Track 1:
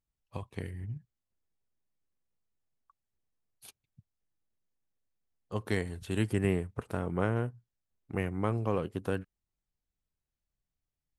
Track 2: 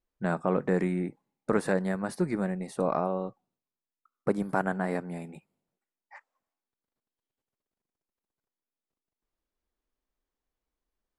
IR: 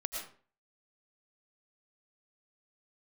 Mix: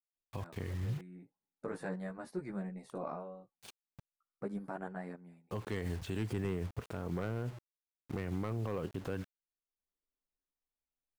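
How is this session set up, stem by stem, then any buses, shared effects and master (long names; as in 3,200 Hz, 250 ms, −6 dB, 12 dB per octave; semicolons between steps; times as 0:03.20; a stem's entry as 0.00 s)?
+3.0 dB, 0.00 s, no send, low-pass filter 8,400 Hz 24 dB per octave; bit reduction 9 bits
−9.0 dB, 0.15 s, no send, multi-voice chorus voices 2, 0.2 Hz, delay 14 ms, depth 3.7 ms; automatic ducking −15 dB, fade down 0.55 s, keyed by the first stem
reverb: not used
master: high-shelf EQ 4,600 Hz −4.5 dB; hard clipping −18 dBFS, distortion −16 dB; brickwall limiter −28 dBFS, peak gain reduction 10 dB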